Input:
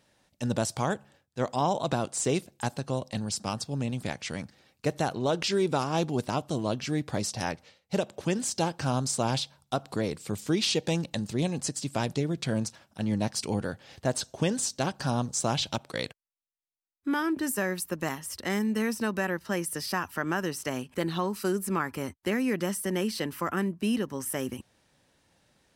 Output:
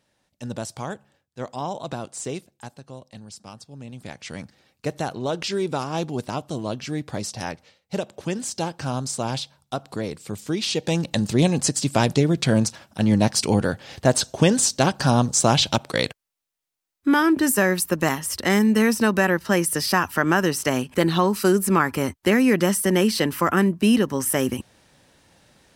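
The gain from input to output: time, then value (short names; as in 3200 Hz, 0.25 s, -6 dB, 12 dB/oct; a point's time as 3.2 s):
2.25 s -3 dB
2.76 s -9.5 dB
3.75 s -9.5 dB
4.39 s +1 dB
10.65 s +1 dB
11.24 s +10 dB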